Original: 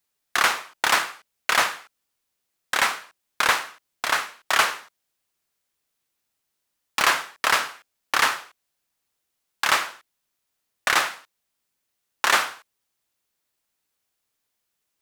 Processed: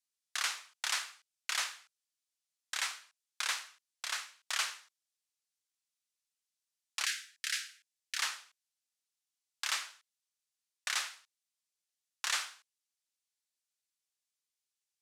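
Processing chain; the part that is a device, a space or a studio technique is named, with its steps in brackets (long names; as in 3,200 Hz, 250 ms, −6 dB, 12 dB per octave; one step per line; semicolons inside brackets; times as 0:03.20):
piezo pickup straight into a mixer (low-pass filter 7,000 Hz 12 dB per octave; first difference)
0:07.05–0:08.18: elliptic band-stop filter 320–1,600 Hz, stop band 50 dB
level −4 dB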